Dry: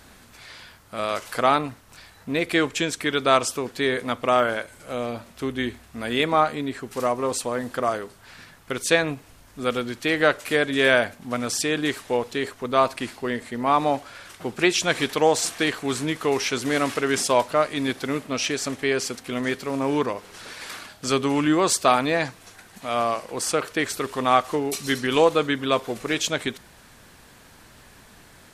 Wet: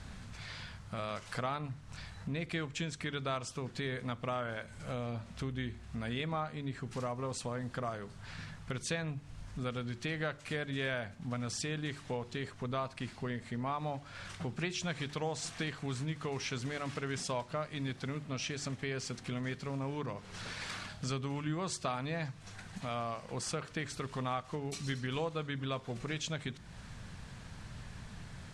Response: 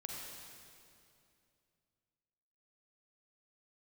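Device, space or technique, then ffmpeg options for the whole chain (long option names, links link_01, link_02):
jukebox: -af "lowpass=7600,lowpass=frequency=11000:width=0.5412,lowpass=frequency=11000:width=1.3066,lowshelf=frequency=220:width_type=q:width=1.5:gain=10,acompressor=threshold=-35dB:ratio=3,bandreject=frequency=72.53:width_type=h:width=4,bandreject=frequency=145.06:width_type=h:width=4,bandreject=frequency=217.59:width_type=h:width=4,bandreject=frequency=290.12:width_type=h:width=4,bandreject=frequency=362.65:width_type=h:width=4,volume=-3dB"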